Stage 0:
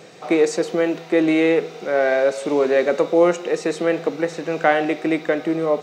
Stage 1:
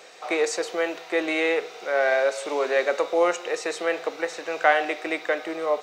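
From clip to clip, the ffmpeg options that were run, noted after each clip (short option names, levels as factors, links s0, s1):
-af "highpass=650"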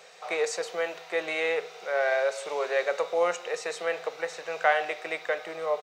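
-af "firequalizer=gain_entry='entry(180,0);entry(260,-20);entry(440,-4)':delay=0.05:min_phase=1"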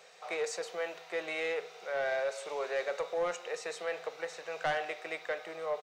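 -af "asoftclip=type=tanh:threshold=0.112,volume=0.531"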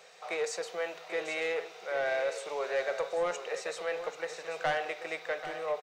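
-af "aecho=1:1:787:0.282,volume=1.19"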